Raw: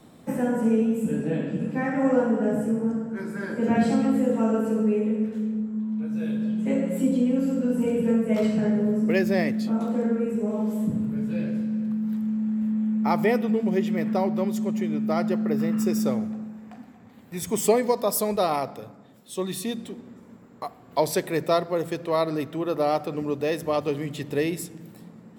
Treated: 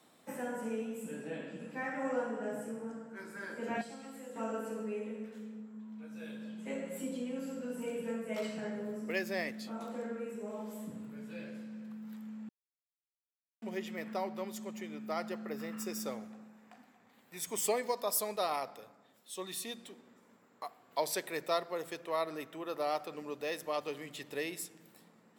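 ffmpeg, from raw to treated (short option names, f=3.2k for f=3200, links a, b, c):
-filter_complex "[0:a]asettb=1/sr,asplit=3[a][b][c];[a]atrim=end=3.814[d];[b]atrim=start=3.81:end=4.36,asetpts=PTS-STARTPTS,afade=t=in:d=0.004:c=qsin,afade=t=out:st=0.546:d=0.004:c=qsin,acrossover=split=780|3800[e][f][g];[e]acompressor=threshold=-32dB:ratio=4[h];[f]acompressor=threshold=-48dB:ratio=4[i];[g]acompressor=threshold=-51dB:ratio=4[j];[h][i][j]amix=inputs=3:normalize=0[k];[c]atrim=start=4.356[l];[d][k]acrossfade=d=0.004:c1=hsin:c2=qsin[m];[m][l]acrossfade=d=0.004:c1=qsin:c2=hsin,asettb=1/sr,asplit=3[n][o][p];[n]atrim=end=22.004[q];[o]atrim=start=22:end=22.67,asetpts=PTS-STARTPTS,afade=t=in:d=0.004:c=qsin,afade=t=out:st=0.666:d=0.004:c=qsin,equalizer=f=4.4k:w=3.3:g=-6.5[r];[p]atrim=start=22.666[s];[q][r]acrossfade=d=0.004:c1=hsin:c2=qsin[t];[t][s]acrossfade=d=0.004:c1=qsin:c2=hsin,asplit=3[u][v][w];[u]atrim=end=12.49,asetpts=PTS-STARTPTS,afade=t=out:st=12.486:d=0.004:c=hsin[x];[v]atrim=start=12.49:end=13.62,asetpts=PTS-STARTPTS,volume=0[y];[w]atrim=start=13.62,asetpts=PTS-STARTPTS,afade=t=in:d=0.004:c=hsin[z];[x][y][z]concat=n=3:v=0:a=1,highpass=f=980:p=1,volume=-5.5dB"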